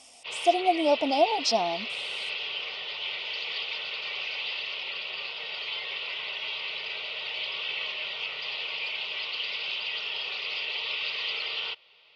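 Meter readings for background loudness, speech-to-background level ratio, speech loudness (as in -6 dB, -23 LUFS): -31.5 LUFS, 6.0 dB, -25.5 LUFS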